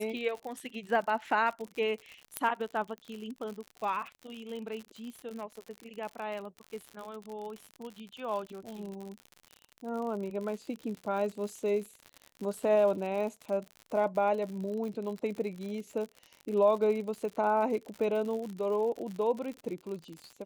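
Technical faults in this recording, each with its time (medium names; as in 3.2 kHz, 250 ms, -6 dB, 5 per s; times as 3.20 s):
crackle 74 per s -37 dBFS
2.37 s: pop -13 dBFS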